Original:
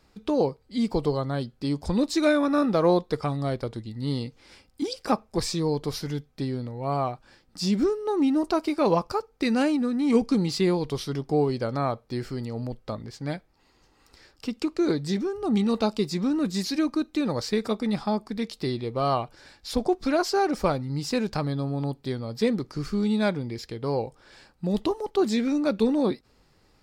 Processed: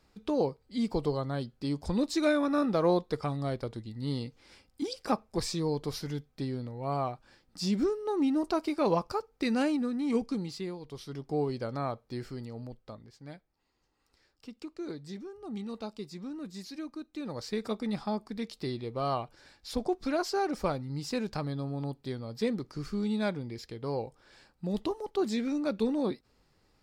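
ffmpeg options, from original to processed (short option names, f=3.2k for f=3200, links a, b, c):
-af "volume=14dB,afade=t=out:st=9.76:d=1.03:silence=0.237137,afade=t=in:st=10.79:d=0.64:silence=0.298538,afade=t=out:st=12.22:d=0.88:silence=0.398107,afade=t=in:st=17.08:d=0.63:silence=0.375837"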